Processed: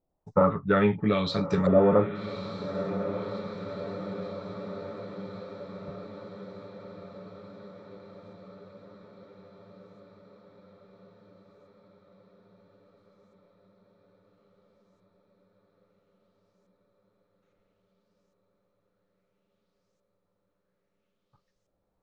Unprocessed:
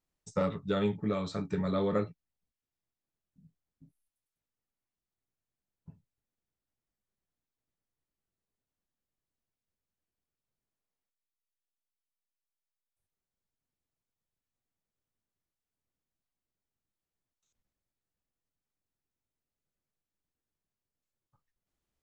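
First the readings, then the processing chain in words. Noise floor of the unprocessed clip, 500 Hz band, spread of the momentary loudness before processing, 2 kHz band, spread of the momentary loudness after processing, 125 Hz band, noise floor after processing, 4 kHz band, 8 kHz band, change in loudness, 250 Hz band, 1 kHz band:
under -85 dBFS, +9.5 dB, 5 LU, +11.0 dB, 23 LU, +7.5 dB, -78 dBFS, +8.0 dB, n/a, +4.5 dB, +7.5 dB, +10.5 dB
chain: LFO low-pass saw up 0.6 Hz 590–6700 Hz; diffused feedback echo 1.192 s, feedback 67%, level -10.5 dB; gain +6.5 dB

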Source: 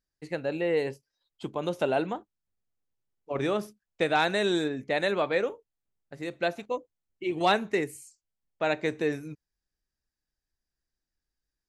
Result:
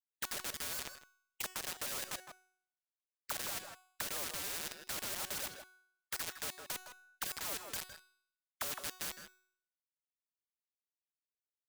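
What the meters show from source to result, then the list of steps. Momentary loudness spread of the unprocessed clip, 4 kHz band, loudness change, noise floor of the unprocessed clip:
13 LU, -5.5 dB, -10.5 dB, under -85 dBFS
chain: band inversion scrambler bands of 2000 Hz; treble ducked by the level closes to 1700 Hz, closed at -24 dBFS; pre-emphasis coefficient 0.8; reverb removal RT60 1.4 s; low shelf 82 Hz +11.5 dB; sample leveller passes 1; in parallel at +2 dB: limiter -35.5 dBFS, peak gain reduction 11 dB; on the sum: auto-wah 580–2900 Hz, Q 14, down, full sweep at -35 dBFS; requantised 10-bit, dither none; resonator 370 Hz, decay 0.62 s, mix 60%; on a send: echo 0.16 s -18 dB; on the sum: spectral compressor 4:1; gain +16 dB

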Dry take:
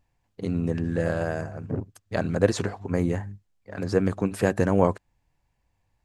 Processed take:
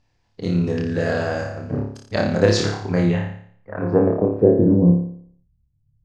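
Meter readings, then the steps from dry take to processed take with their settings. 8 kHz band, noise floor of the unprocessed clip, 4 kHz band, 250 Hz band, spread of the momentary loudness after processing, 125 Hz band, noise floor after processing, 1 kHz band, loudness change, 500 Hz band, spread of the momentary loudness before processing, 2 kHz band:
+4.5 dB, -74 dBFS, +11.0 dB, +7.5 dB, 13 LU, +7.0 dB, -66 dBFS, +2.0 dB, +6.5 dB, +6.5 dB, 11 LU, +5.0 dB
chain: low-pass sweep 5100 Hz -> 130 Hz, 2.84–5.2; flutter echo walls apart 4.9 m, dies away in 0.58 s; gain +3 dB

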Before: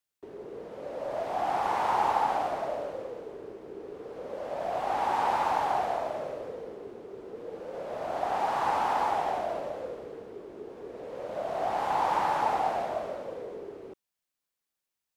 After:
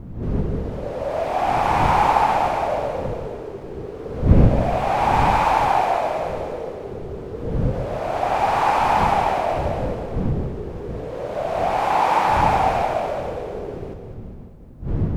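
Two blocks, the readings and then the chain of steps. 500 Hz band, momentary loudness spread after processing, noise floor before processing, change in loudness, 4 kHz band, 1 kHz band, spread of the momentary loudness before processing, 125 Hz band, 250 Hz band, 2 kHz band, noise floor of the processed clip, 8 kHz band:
+9.5 dB, 15 LU, under -85 dBFS, +9.5 dB, +10.0 dB, +9.5 dB, 17 LU, +27.5 dB, +16.5 dB, +11.0 dB, -36 dBFS, +9.5 dB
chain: wind noise 150 Hz -35 dBFS; dynamic EQ 2400 Hz, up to +7 dB, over -58 dBFS, Q 5; split-band echo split 430 Hz, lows 0.143 s, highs 0.204 s, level -8.5 dB; gain +8.5 dB

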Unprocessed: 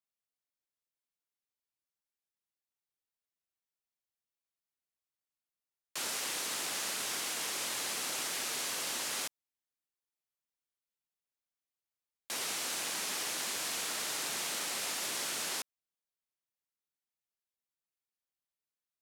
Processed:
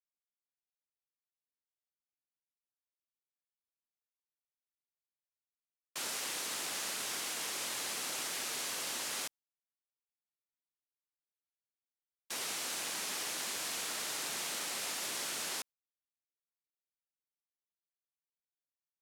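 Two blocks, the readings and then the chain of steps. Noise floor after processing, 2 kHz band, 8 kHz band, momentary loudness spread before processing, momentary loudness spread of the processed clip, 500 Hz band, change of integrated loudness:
under -85 dBFS, -2.0 dB, -2.0 dB, 3 LU, 3 LU, -2.0 dB, -2.0 dB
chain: gate with hold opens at -29 dBFS; gain -2 dB

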